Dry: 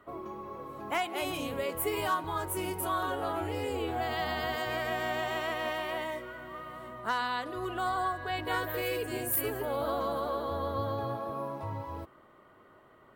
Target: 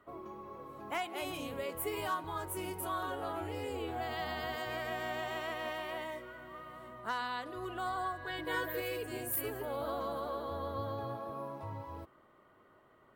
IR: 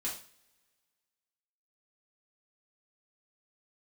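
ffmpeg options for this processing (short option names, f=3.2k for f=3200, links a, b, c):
-filter_complex "[0:a]asettb=1/sr,asplit=3[a][b][c];[a]atrim=end=8.244[d];[b]atrim=start=8.24:end=8.8,asetpts=PTS-STARTPTS,afade=t=in:d=0.004:c=qsin,afade=t=out:st=0.556:d=0.004:c=qsin,aecho=1:1:6:0.74,atrim=end_sample=24696[e];[c]atrim=start=8.796[f];[d][e]acrossfade=d=0.004:c1=hsin:c2=qsin[g];[g][f]acrossfade=d=0.004:c1=qsin:c2=hsin,volume=-5.5dB"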